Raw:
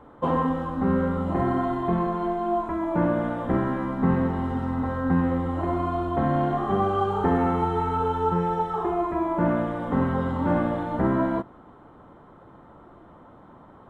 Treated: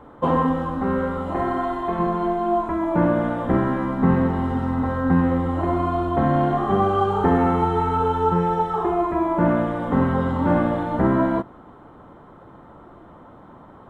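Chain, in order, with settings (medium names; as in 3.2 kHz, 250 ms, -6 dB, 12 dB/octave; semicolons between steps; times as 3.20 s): 0.77–1.98 s: peaking EQ 140 Hz -7.5 dB -> -14.5 dB 1.9 oct; trim +4 dB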